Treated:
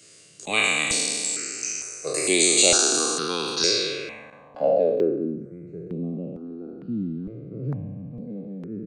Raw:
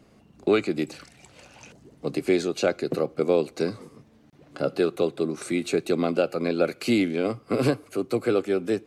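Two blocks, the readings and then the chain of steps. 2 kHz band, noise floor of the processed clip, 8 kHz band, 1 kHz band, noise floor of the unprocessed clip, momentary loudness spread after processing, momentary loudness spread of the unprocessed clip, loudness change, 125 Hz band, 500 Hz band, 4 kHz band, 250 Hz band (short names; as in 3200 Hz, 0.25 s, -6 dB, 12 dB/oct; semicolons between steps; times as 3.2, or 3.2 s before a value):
+7.0 dB, -50 dBFS, +21.5 dB, +1.5 dB, -57 dBFS, 19 LU, 7 LU, +3.5 dB, 0.0 dB, -2.0 dB, +13.0 dB, -4.0 dB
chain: spectral trails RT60 2.38 s; tilt +4.5 dB/oct; low-pass sweep 8300 Hz -> 180 Hz, 3.44–5.45; low shelf 170 Hz +6 dB; downsampling 22050 Hz; step phaser 2.2 Hz 230–5400 Hz; gain +2 dB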